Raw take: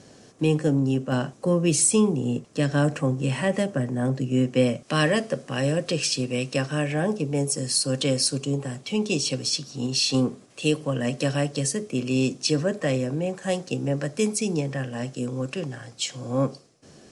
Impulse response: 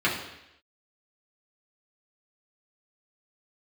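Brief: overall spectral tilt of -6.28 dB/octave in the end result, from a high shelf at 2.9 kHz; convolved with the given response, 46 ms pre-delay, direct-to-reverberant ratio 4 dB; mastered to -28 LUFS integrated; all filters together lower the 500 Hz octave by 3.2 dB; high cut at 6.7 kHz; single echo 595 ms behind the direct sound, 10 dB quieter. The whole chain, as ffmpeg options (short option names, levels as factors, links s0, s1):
-filter_complex "[0:a]lowpass=6700,equalizer=f=500:t=o:g=-3.5,highshelf=f=2900:g=-7.5,aecho=1:1:595:0.316,asplit=2[s0][s1];[1:a]atrim=start_sample=2205,adelay=46[s2];[s1][s2]afir=irnorm=-1:irlink=0,volume=0.119[s3];[s0][s3]amix=inputs=2:normalize=0,volume=0.708"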